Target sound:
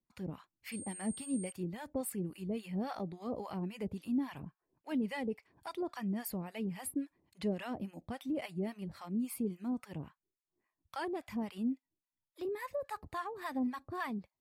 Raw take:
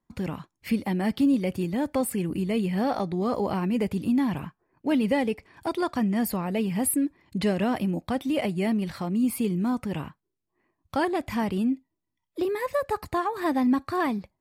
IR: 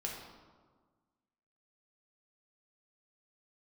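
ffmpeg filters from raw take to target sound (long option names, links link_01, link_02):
-filter_complex "[0:a]acrossover=split=740[link_01][link_02];[link_01]aeval=exprs='val(0)*(1-1/2+1/2*cos(2*PI*3.6*n/s))':channel_layout=same[link_03];[link_02]aeval=exprs='val(0)*(1-1/2-1/2*cos(2*PI*3.6*n/s))':channel_layout=same[link_04];[link_03][link_04]amix=inputs=2:normalize=0,asettb=1/sr,asplit=3[link_05][link_06][link_07];[link_05]atrim=end=0.724[link_08];[link_06]atrim=start=0.72:end=1.52,asetpts=PTS-STARTPTS,afade=type=in:duration=0.004:curve=qsin,afade=type=out:start_time=0.796:duration=0.004:curve=qsin,aeval=exprs='val(0)+0.0141*sin(2*PI*8600*n/s)':channel_layout=same[link_09];[link_07]atrim=start=1.516[link_10];[link_08][link_09]acrossfade=duration=0.004:curve1=hsin:curve2=qsin[link_11];[link_11][link_10]acrossfade=duration=0.004:curve1=qsin:curve2=hsin,volume=-8dB"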